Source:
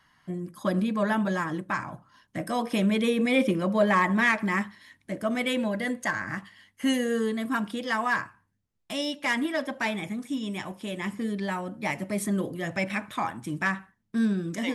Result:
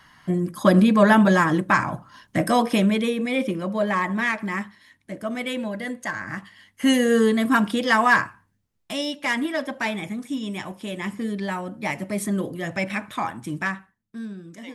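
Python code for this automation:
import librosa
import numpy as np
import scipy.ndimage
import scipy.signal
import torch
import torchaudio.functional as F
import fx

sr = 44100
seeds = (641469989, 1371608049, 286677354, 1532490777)

y = fx.gain(x, sr, db=fx.line((2.47, 10.5), (3.21, -1.0), (6.07, -1.0), (7.19, 9.0), (8.16, 9.0), (9.06, 2.5), (13.56, 2.5), (14.23, -9.5)))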